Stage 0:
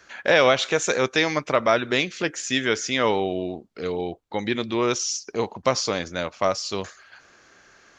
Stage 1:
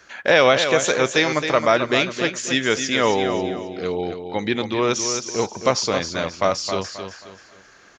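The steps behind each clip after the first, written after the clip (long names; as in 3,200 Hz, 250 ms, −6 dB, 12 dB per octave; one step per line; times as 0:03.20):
repeating echo 267 ms, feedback 33%, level −8 dB
level +2.5 dB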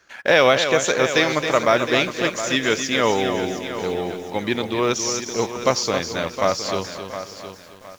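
mu-law and A-law mismatch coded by A
feedback echo at a low word length 714 ms, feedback 35%, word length 7 bits, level −11 dB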